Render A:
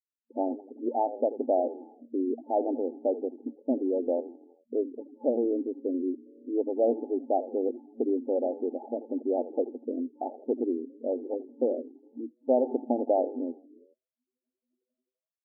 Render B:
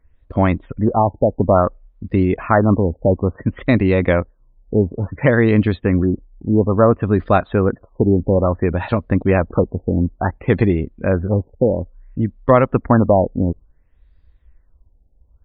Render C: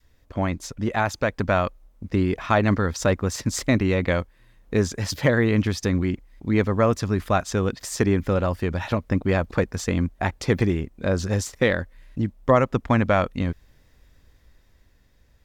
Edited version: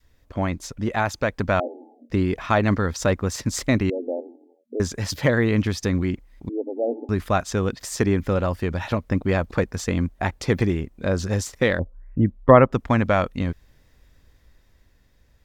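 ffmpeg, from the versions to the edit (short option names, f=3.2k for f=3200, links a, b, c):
-filter_complex "[0:a]asplit=3[a][b][c];[2:a]asplit=5[d][e][f][g][h];[d]atrim=end=1.602[i];[a]atrim=start=1.598:end=2.102[j];[e]atrim=start=2.098:end=3.902[k];[b]atrim=start=3.898:end=4.802[l];[f]atrim=start=4.798:end=6.492[m];[c]atrim=start=6.488:end=7.092[n];[g]atrim=start=7.088:end=11.792[o];[1:a]atrim=start=11.788:end=12.722[p];[h]atrim=start=12.718[q];[i][j]acrossfade=d=0.004:c1=hsin:c2=hsin[r];[r][k]acrossfade=d=0.004:c1=hsin:c2=hsin[s];[s][l]acrossfade=d=0.004:c1=hsin:c2=hsin[t];[t][m]acrossfade=d=0.004:c1=hsin:c2=hsin[u];[u][n]acrossfade=d=0.004:c1=hsin:c2=hsin[v];[v][o]acrossfade=d=0.004:c1=hsin:c2=hsin[w];[w][p]acrossfade=d=0.004:c1=hsin:c2=hsin[x];[x][q]acrossfade=d=0.004:c1=hsin:c2=hsin"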